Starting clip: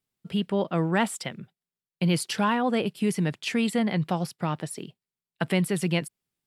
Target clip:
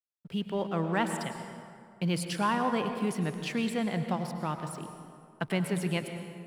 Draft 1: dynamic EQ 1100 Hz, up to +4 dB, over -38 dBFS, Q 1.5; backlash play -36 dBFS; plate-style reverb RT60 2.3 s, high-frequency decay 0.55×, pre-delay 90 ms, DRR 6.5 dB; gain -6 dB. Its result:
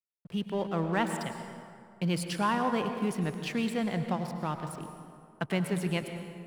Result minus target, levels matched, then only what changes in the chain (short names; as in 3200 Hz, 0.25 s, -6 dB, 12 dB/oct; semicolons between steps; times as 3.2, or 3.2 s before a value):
backlash: distortion +8 dB
change: backlash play -44.5 dBFS